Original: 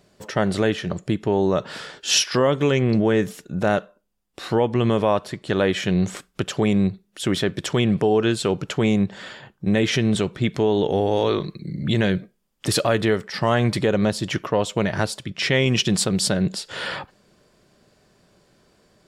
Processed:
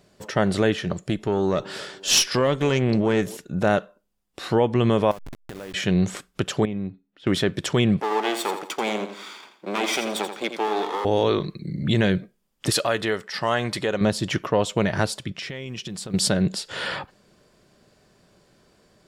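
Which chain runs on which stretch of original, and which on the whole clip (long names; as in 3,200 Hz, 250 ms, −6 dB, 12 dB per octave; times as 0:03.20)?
0:00.93–0:03.37: high-shelf EQ 3,400 Hz +5 dB + tube saturation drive 8 dB, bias 0.5 + delay with a band-pass on its return 257 ms, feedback 53%, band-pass 480 Hz, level −19 dB
0:05.11–0:05.74: hold until the input has moved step −22 dBFS + downward compressor 5 to 1, threshold −35 dBFS
0:06.65–0:07.27: high-frequency loss of the air 300 metres + tuned comb filter 280 Hz, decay 0.28 s, harmonics odd, mix 70%
0:08.00–0:11.05: lower of the sound and its delayed copy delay 0.87 ms + high-pass filter 310 Hz 24 dB per octave + repeating echo 84 ms, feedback 35%, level −9 dB
0:12.70–0:14.01: low-shelf EQ 380 Hz −11 dB + notch filter 2,300 Hz, Q 27
0:15.33–0:16.14: downward compressor 10 to 1, threshold −30 dBFS + floating-point word with a short mantissa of 6 bits
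whole clip: no processing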